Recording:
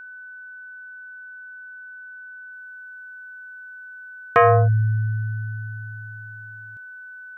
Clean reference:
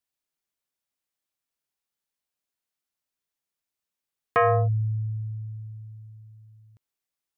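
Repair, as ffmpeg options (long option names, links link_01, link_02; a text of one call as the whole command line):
ffmpeg -i in.wav -af "bandreject=frequency=1500:width=30,asetnsamples=nb_out_samples=441:pad=0,asendcmd='2.53 volume volume -6dB',volume=0dB" out.wav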